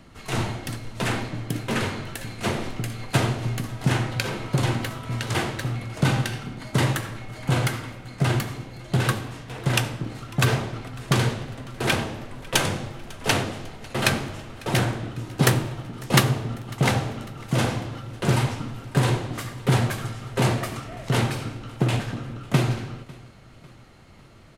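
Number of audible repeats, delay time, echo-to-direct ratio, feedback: 2, 549 ms, -22.0 dB, 50%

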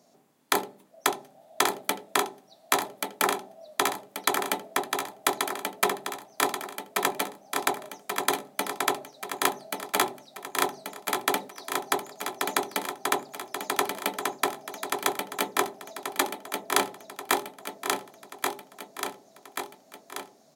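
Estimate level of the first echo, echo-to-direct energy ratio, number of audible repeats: -4.0 dB, -2.5 dB, 6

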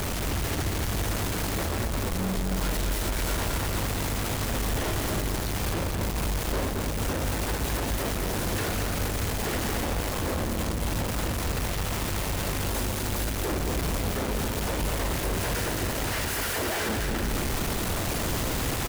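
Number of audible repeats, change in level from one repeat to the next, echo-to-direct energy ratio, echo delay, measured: 2, -6.0 dB, -3.5 dB, 219 ms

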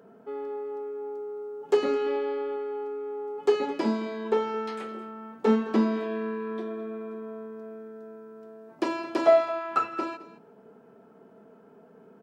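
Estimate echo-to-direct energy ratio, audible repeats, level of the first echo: -16.5 dB, 2, -22.5 dB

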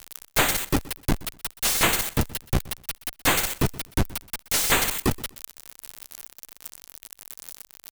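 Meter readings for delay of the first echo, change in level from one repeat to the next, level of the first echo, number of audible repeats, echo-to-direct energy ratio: 124 ms, -12.5 dB, -20.0 dB, 2, -20.0 dB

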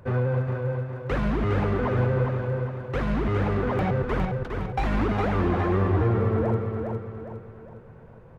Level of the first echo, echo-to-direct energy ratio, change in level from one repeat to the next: -5.0 dB, -4.0 dB, -7.5 dB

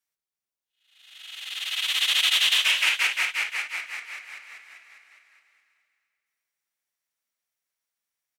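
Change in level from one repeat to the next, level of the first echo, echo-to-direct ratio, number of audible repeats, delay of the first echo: -9.5 dB, -10.5 dB, -10.0 dB, 3, 348 ms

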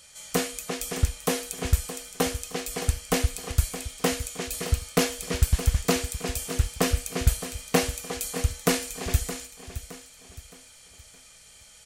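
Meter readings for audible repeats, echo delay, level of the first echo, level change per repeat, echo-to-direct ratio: 3, 617 ms, -12.5 dB, -8.5 dB, -12.0 dB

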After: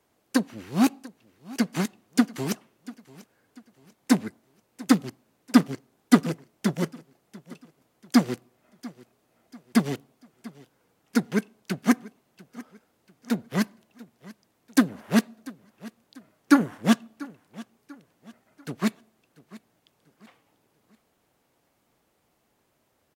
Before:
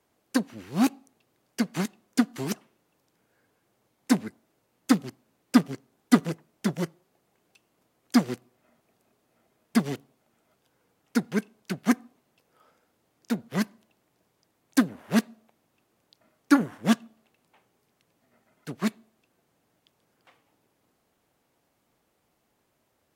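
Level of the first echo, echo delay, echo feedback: -20.5 dB, 691 ms, 40%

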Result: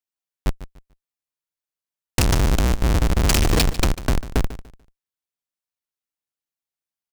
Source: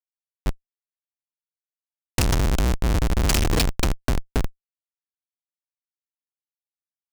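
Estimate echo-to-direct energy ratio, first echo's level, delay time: -14.5 dB, -15.0 dB, 146 ms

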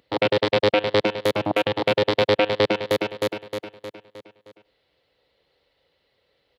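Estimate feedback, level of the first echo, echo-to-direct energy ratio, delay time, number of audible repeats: 30%, -22.5 dB, -22.0 dB, 99 ms, 2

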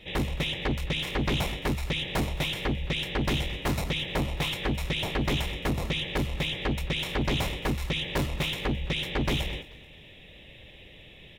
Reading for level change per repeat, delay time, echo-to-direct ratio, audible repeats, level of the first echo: -9.0 dB, 218 ms, -19.5 dB, 2, -20.0 dB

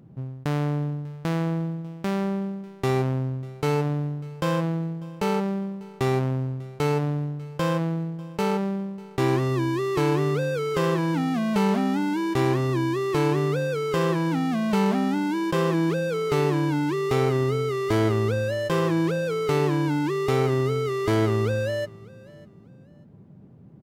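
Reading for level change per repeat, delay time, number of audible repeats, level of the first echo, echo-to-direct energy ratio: -12.0 dB, 595 ms, 2, -22.5 dB, -22.0 dB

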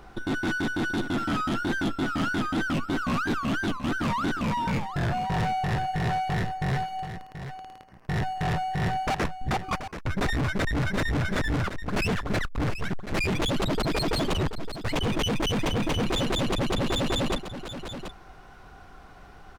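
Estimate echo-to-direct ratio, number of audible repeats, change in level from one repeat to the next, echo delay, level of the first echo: -10.5 dB, 1, no regular repeats, 731 ms, -10.5 dB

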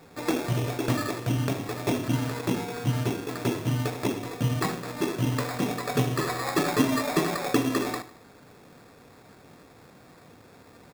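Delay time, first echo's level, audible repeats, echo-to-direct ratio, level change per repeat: 76 ms, -15.0 dB, 3, -14.0 dB, -7.0 dB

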